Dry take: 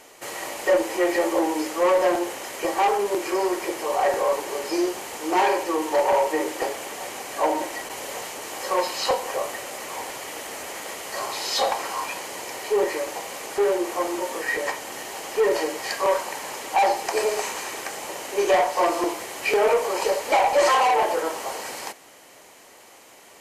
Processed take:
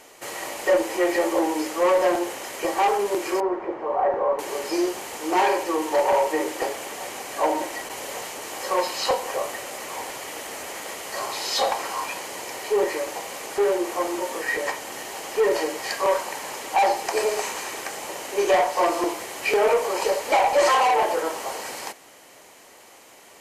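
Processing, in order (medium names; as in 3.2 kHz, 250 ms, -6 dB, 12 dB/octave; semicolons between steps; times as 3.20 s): 3.40–4.39 s: Chebyshev low-pass 1.1 kHz, order 2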